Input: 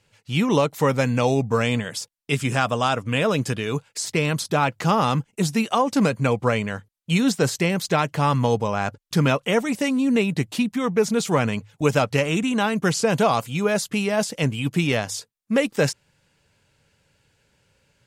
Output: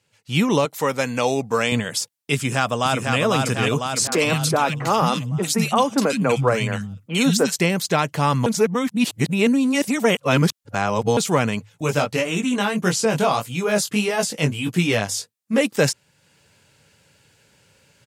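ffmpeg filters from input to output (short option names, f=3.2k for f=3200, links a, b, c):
-filter_complex "[0:a]asettb=1/sr,asplit=3[a][b][c];[a]atrim=end=0.654[d];[b]atrim=start=0.65:end=1.72,asetpts=PTS-STARTPTS,afade=t=in:d=0.004:c=qsin,afade=t=out:st=1.066:d=0.004:c=qsin,highpass=f=350:p=1[e];[c]atrim=start=1.716[f];[d][e]acrossfade=d=0.004:c1=hsin:c2=qsin[g];[g][f]acrossfade=d=0.004:c1=qsin:c2=hsin,asplit=2[h][i];[i]afade=t=in:st=2.35:d=0.01,afade=t=out:st=3.18:d=0.01,aecho=0:1:500|1000|1500|2000|2500|3000|3500|4000:0.668344|0.367589|0.202174|0.111196|0.0611576|0.0336367|0.0185002|0.0101751[j];[h][j]amix=inputs=2:normalize=0,asettb=1/sr,asplit=3[k][l][m];[k]atrim=end=4.074[n];[l]atrim=start=4.07:end=7.56,asetpts=PTS-STARTPTS,afade=t=in:d=0.004:c=qsin,afade=t=out:st=3.486:d=0.004:c=qsin,acrossover=split=210|1900[o][p][q];[q]adelay=50[r];[o]adelay=170[s];[s][p][r]amix=inputs=3:normalize=0,atrim=end_sample=153909[t];[m]atrim=start=7.556[u];[n][t]acrossfade=d=0.004:c1=hsin:c2=qsin[v];[v][u]acrossfade=d=0.004:c1=qsin:c2=hsin,asettb=1/sr,asplit=3[w][x][y];[w]atrim=end=11.694[z];[x]atrim=start=11.69:end=15.61,asetpts=PTS-STARTPTS,afade=t=in:d=0.004:c=qsin,afade=t=out:st=3.916:d=0.004:c=qsin,flanger=delay=16.5:depth=4:speed=1.6[aa];[y]atrim=start=15.606[ab];[z][aa]acrossfade=d=0.004:c1=hsin:c2=qsin[ac];[ac][ab]acrossfade=d=0.004:c1=qsin:c2=hsin,asplit=3[ad][ae][af];[ad]atrim=end=8.462[ag];[ae]atrim=start=8.458:end=11.172,asetpts=PTS-STARTPTS,areverse[ah];[af]atrim=start=11.168[ai];[ag][ah]acrossfade=d=0.004:c1=hsin:c2=hsin[aj];[aj][ai]acrossfade=d=0.004:c1=hsin:c2=hsin,dynaudnorm=f=190:g=3:m=11.5dB,highpass=89,highshelf=f=4.9k:g=5,volume=-5dB"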